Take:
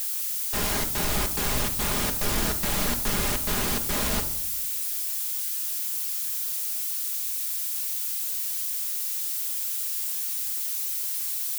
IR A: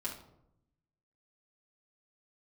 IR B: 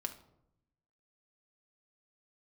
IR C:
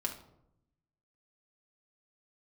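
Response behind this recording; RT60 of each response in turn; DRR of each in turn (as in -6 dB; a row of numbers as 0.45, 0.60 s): B; 0.80, 0.80, 0.80 s; -6.0, 4.0, -0.5 dB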